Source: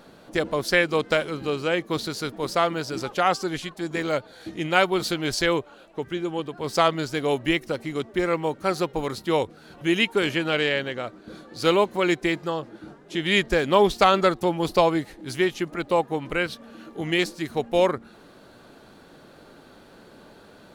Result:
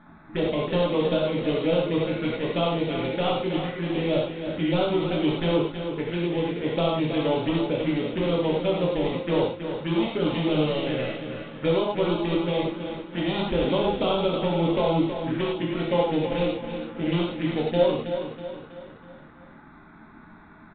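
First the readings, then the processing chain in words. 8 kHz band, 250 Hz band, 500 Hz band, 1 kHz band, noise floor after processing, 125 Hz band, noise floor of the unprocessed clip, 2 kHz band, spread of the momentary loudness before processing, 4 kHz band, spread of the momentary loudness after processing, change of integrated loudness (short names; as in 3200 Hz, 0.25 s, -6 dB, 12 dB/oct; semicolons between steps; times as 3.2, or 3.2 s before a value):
under -40 dB, +2.0 dB, 0.0 dB, -5.5 dB, -49 dBFS, +4.5 dB, -50 dBFS, -8.5 dB, 11 LU, -3.5 dB, 7 LU, -1.5 dB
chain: switching dead time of 0.25 ms; compressor 6:1, threshold -22 dBFS, peak gain reduction 9.5 dB; envelope phaser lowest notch 480 Hz, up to 1900 Hz, full sweep at -22.5 dBFS; on a send: feedback echo 0.323 s, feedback 46%, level -8.5 dB; on the sum: non-linear reverb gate 0.13 s flat, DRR -3.5 dB; downsampling 8000 Hz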